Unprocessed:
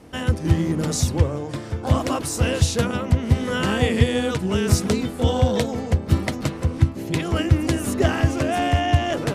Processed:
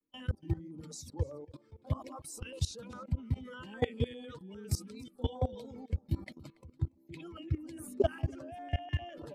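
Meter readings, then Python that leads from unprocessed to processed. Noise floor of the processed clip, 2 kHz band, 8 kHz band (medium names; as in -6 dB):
-67 dBFS, -21.0 dB, -18.0 dB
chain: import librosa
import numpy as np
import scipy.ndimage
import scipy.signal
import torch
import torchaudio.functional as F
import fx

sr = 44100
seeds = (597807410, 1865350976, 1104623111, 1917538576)

y = fx.bin_expand(x, sr, power=2.0)
y = fx.level_steps(y, sr, step_db=21)
y = fx.bass_treble(y, sr, bass_db=-5, treble_db=-2)
y = y + 10.0 ** (-23.0 / 20.0) * np.pad(y, (int(284 * sr / 1000.0), 0))[:len(y)]
y = fx.filter_held_notch(y, sr, hz=9.9, low_hz=720.0, high_hz=2800.0)
y = y * 10.0 ** (-1.5 / 20.0)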